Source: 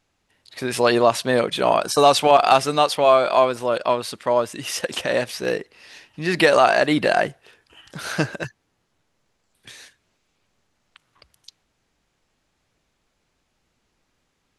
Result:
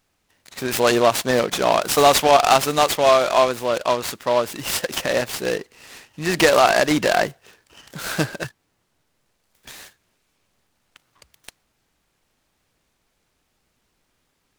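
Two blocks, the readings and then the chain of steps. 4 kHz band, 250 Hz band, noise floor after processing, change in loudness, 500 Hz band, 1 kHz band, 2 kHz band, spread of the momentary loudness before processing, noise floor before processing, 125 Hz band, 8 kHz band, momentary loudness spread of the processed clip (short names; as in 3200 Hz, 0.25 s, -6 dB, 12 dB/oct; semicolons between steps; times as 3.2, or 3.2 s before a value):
+2.0 dB, 0.0 dB, -71 dBFS, +0.5 dB, 0.0 dB, 0.0 dB, +1.0 dB, 13 LU, -72 dBFS, +0.5 dB, +5.5 dB, 12 LU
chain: high shelf 6600 Hz +10.5 dB; noise-modulated delay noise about 2500 Hz, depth 0.038 ms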